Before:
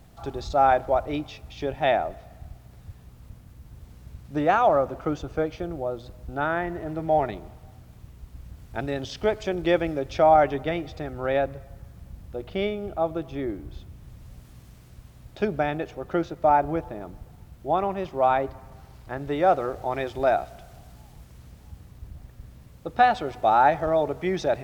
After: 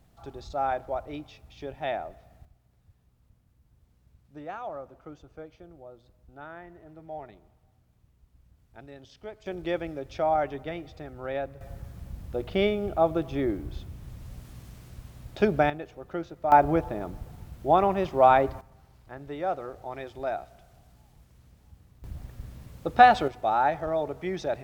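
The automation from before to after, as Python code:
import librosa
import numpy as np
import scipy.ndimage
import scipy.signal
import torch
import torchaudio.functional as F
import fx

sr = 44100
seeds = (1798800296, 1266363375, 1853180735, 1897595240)

y = fx.gain(x, sr, db=fx.steps((0.0, -9.0), (2.45, -17.5), (9.46, -8.0), (11.61, 2.5), (15.7, -8.0), (16.52, 3.0), (18.61, -9.5), (22.04, 3.0), (23.28, -5.5)))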